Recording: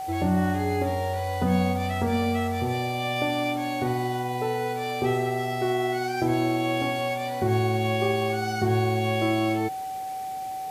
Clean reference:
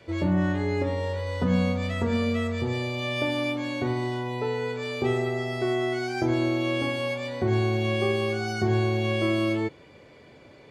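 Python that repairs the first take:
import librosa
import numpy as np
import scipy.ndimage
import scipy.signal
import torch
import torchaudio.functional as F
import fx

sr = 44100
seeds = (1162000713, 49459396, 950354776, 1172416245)

y = fx.notch(x, sr, hz=760.0, q=30.0)
y = fx.noise_reduce(y, sr, print_start_s=10.19, print_end_s=10.69, reduce_db=12.0)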